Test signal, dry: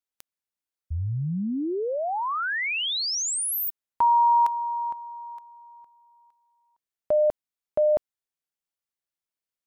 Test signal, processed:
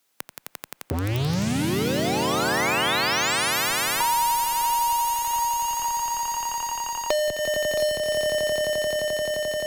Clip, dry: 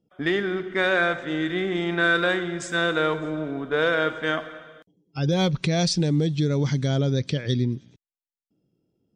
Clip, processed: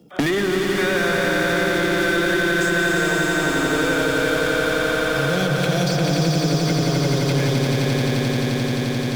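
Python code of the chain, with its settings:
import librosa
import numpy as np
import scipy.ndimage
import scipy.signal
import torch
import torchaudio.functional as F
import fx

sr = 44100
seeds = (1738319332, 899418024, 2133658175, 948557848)

p1 = scipy.signal.sosfilt(scipy.signal.butter(2, 120.0, 'highpass', fs=sr, output='sos'), x)
p2 = fx.transient(p1, sr, attack_db=-7, sustain_db=6)
p3 = fx.fuzz(p2, sr, gain_db=46.0, gate_db=-50.0)
p4 = p2 + F.gain(torch.from_numpy(p3), -11.5).numpy()
p5 = fx.echo_swell(p4, sr, ms=87, loudest=5, wet_db=-4.0)
p6 = fx.band_squash(p5, sr, depth_pct=100)
y = F.gain(torch.from_numpy(p6), -7.5).numpy()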